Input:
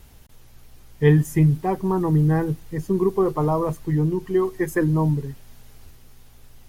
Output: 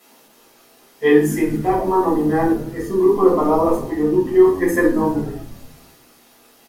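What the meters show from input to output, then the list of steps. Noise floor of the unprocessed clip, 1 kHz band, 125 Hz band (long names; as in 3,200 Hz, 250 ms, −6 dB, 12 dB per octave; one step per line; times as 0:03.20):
−48 dBFS, +7.5 dB, −9.0 dB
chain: high-pass filter 280 Hz 24 dB per octave
on a send: echo with shifted repeats 123 ms, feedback 60%, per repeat −95 Hz, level −17 dB
on the sum: rectangular room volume 400 cubic metres, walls furnished, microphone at 6.6 metres
level −3 dB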